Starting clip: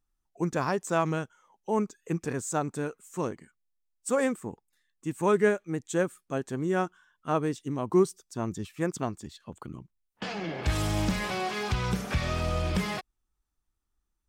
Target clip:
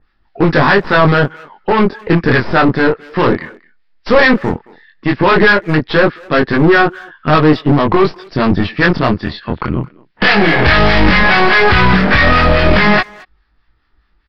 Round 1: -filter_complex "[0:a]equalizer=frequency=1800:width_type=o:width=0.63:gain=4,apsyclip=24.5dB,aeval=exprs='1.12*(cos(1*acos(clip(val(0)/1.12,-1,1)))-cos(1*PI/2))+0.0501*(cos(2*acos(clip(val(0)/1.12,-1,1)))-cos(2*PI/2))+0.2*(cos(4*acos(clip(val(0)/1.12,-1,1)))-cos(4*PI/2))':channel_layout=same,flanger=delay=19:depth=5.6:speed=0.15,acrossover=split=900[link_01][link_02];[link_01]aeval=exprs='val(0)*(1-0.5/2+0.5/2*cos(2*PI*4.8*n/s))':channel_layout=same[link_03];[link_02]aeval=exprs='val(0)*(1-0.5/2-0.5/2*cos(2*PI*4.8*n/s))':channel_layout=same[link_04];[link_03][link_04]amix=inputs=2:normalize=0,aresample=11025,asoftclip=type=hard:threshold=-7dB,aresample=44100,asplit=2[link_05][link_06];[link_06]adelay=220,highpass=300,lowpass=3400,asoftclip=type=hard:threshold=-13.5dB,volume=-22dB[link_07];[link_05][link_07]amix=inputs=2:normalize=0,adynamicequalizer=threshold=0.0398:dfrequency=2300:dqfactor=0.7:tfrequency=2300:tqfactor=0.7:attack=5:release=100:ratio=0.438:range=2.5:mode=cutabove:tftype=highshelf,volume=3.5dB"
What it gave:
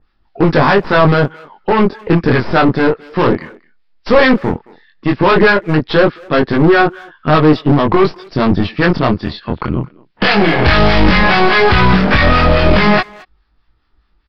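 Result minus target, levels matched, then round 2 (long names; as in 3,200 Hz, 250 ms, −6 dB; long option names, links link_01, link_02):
2,000 Hz band −2.5 dB
-filter_complex "[0:a]equalizer=frequency=1800:width_type=o:width=0.63:gain=10,apsyclip=24.5dB,aeval=exprs='1.12*(cos(1*acos(clip(val(0)/1.12,-1,1)))-cos(1*PI/2))+0.0501*(cos(2*acos(clip(val(0)/1.12,-1,1)))-cos(2*PI/2))+0.2*(cos(4*acos(clip(val(0)/1.12,-1,1)))-cos(4*PI/2))':channel_layout=same,flanger=delay=19:depth=5.6:speed=0.15,acrossover=split=900[link_01][link_02];[link_01]aeval=exprs='val(0)*(1-0.5/2+0.5/2*cos(2*PI*4.8*n/s))':channel_layout=same[link_03];[link_02]aeval=exprs='val(0)*(1-0.5/2-0.5/2*cos(2*PI*4.8*n/s))':channel_layout=same[link_04];[link_03][link_04]amix=inputs=2:normalize=0,aresample=11025,asoftclip=type=hard:threshold=-7dB,aresample=44100,asplit=2[link_05][link_06];[link_06]adelay=220,highpass=300,lowpass=3400,asoftclip=type=hard:threshold=-13.5dB,volume=-22dB[link_07];[link_05][link_07]amix=inputs=2:normalize=0,adynamicequalizer=threshold=0.0398:dfrequency=2300:dqfactor=0.7:tfrequency=2300:tqfactor=0.7:attack=5:release=100:ratio=0.438:range=2.5:mode=cutabove:tftype=highshelf,volume=3.5dB"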